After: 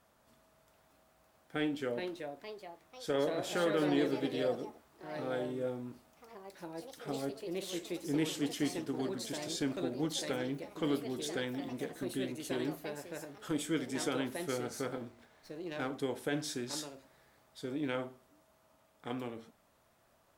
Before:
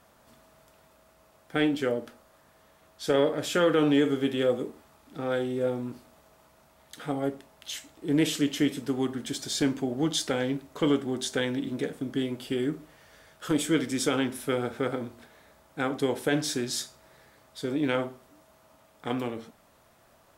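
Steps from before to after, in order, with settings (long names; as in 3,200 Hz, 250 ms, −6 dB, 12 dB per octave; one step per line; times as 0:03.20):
delay with pitch and tempo change per echo 670 ms, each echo +3 semitones, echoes 3, each echo −6 dB
0:14.97–0:15.97: windowed peak hold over 3 samples
level −9 dB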